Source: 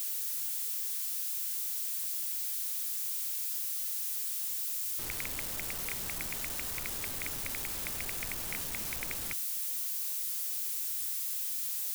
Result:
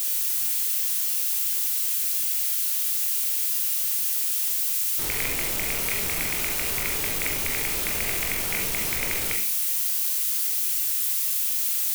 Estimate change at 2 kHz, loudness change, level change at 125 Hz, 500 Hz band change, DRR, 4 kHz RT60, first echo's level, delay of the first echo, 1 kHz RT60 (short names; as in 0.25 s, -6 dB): +12.0 dB, +10.5 dB, +9.5 dB, +13.0 dB, 0.0 dB, 0.50 s, none, none, 0.50 s